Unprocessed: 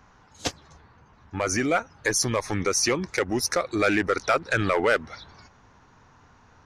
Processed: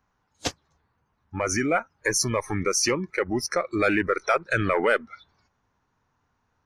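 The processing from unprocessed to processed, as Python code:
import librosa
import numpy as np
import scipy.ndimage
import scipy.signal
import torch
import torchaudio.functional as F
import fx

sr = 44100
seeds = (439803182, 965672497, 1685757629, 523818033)

y = fx.high_shelf(x, sr, hz=fx.line((2.9, 5200.0), (3.61, 8000.0)), db=-10.5, at=(2.9, 3.61), fade=0.02)
y = fx.noise_reduce_blind(y, sr, reduce_db=17)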